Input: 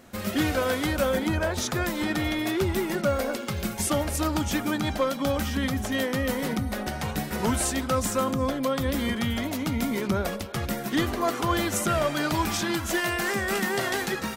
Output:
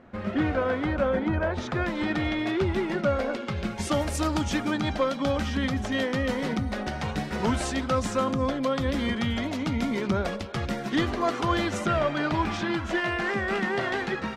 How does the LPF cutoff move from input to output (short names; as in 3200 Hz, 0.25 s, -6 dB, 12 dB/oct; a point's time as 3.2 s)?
1.34 s 1900 Hz
2.04 s 3500 Hz
3.73 s 3500 Hz
4.03 s 9100 Hz
4.76 s 5100 Hz
11.54 s 5100 Hz
12.12 s 3000 Hz